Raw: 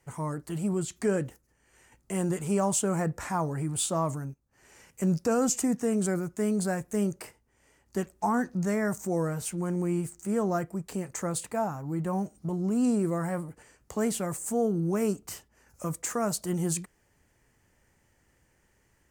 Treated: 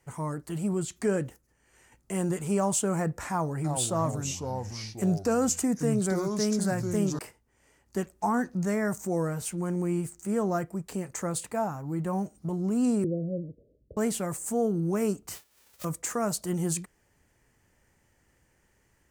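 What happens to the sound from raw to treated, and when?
3.30–7.19 s: ever faster or slower copies 342 ms, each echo -4 st, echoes 2, each echo -6 dB
13.04–13.97 s: steep low-pass 610 Hz 96 dB/octave
15.34–15.83 s: formants flattened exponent 0.1

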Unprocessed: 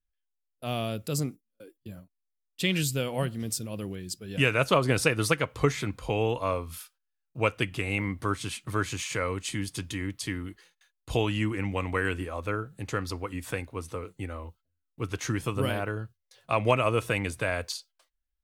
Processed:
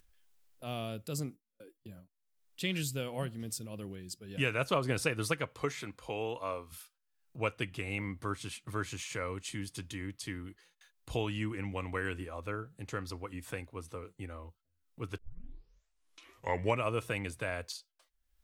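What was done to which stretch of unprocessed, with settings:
5.53–6.72 s: bass shelf 180 Hz -11.5 dB
15.18 s: tape start 1.66 s
whole clip: upward compressor, threshold -40 dBFS; trim -7.5 dB

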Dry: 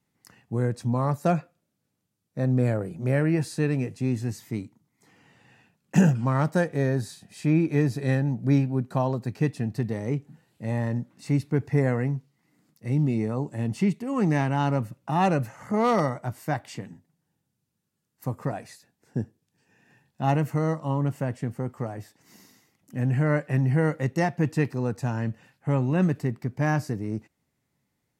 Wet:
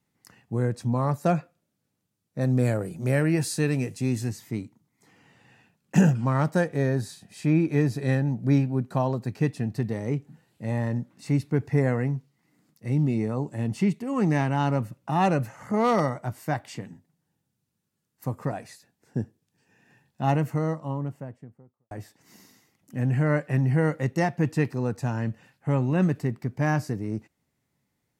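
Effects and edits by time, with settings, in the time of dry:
2.41–4.29 s: treble shelf 3.8 kHz +10.5 dB
20.24–21.91 s: studio fade out

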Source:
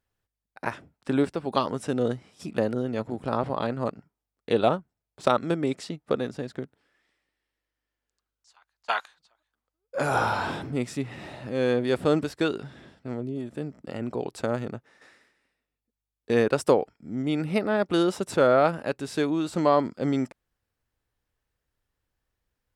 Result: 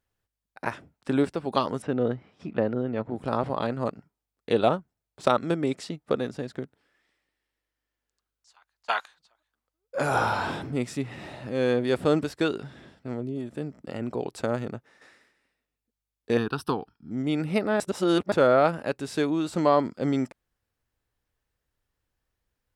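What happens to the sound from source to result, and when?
1.82–3.16 s: low-pass 2.5 kHz
16.37–17.11 s: static phaser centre 2.1 kHz, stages 6
17.80–18.32 s: reverse

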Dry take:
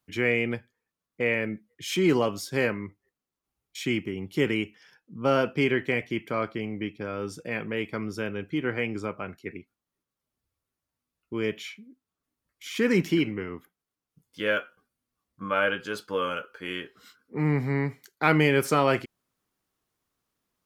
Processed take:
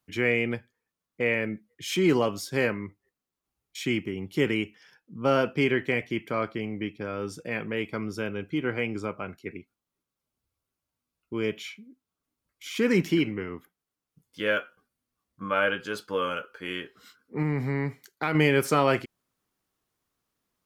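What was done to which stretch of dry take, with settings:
7.84–12.91 s: band-stop 1.8 kHz
17.42–18.35 s: compression 3:1, threshold -23 dBFS

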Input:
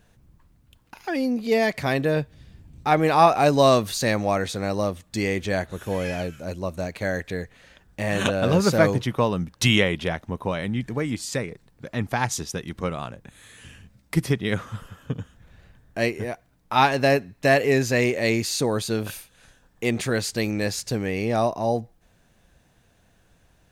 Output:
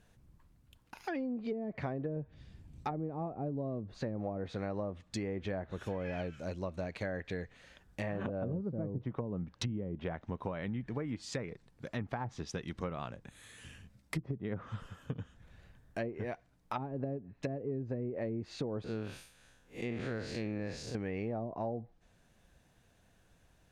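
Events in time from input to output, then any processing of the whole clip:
18.84–20.95 s: spectral blur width 143 ms
whole clip: low-pass that closes with the level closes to 350 Hz, closed at -17 dBFS; compression, threshold -27 dBFS; trim -6.5 dB

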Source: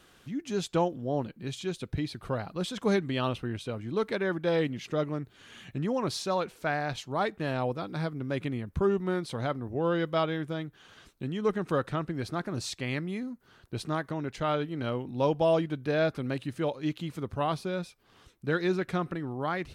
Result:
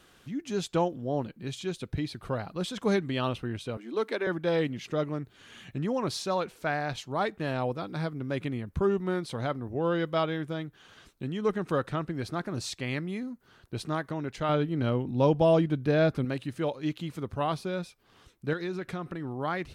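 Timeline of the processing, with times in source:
3.77–4.27 s: steep high-pass 230 Hz 48 dB/octave
14.49–16.25 s: bass shelf 360 Hz +7.5 dB
18.53–19.25 s: compression 3:1, threshold -31 dBFS

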